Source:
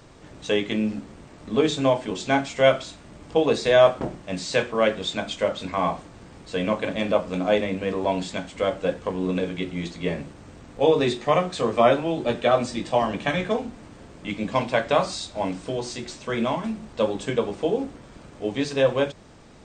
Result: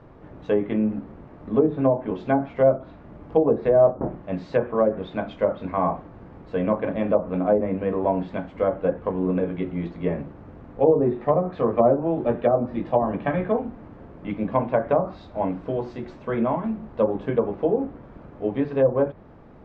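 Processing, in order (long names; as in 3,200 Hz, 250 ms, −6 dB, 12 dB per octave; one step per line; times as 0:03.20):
treble cut that deepens with the level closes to 670 Hz, closed at −15.5 dBFS
low-pass filter 1,300 Hz 12 dB per octave
level +2 dB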